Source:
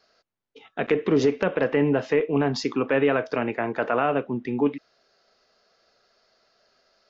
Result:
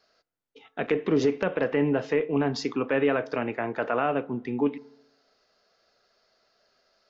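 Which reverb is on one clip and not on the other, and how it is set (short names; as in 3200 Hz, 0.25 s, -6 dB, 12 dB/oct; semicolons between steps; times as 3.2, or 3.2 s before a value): FDN reverb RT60 0.92 s, low-frequency decay 0.95×, high-frequency decay 0.3×, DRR 19.5 dB; gain -3 dB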